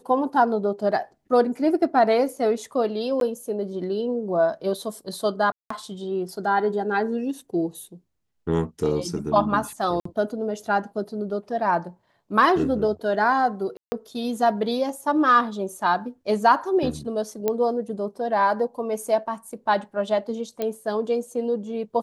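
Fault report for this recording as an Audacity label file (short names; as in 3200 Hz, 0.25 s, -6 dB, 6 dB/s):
3.200000	3.210000	gap 12 ms
5.520000	5.700000	gap 0.184 s
10.000000	10.050000	gap 54 ms
13.770000	13.920000	gap 0.15 s
17.480000	17.480000	pop -10 dBFS
20.620000	20.620000	pop -14 dBFS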